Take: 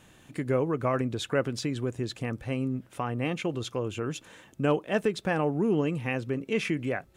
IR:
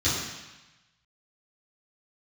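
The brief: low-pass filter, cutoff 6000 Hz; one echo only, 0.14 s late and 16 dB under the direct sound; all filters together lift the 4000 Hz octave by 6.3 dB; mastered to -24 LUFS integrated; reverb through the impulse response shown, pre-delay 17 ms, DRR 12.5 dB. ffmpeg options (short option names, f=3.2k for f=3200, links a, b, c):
-filter_complex "[0:a]lowpass=6k,equalizer=f=4k:t=o:g=8.5,aecho=1:1:140:0.158,asplit=2[a][b];[1:a]atrim=start_sample=2205,adelay=17[c];[b][c]afir=irnorm=-1:irlink=0,volume=-25dB[d];[a][d]amix=inputs=2:normalize=0,volume=4.5dB"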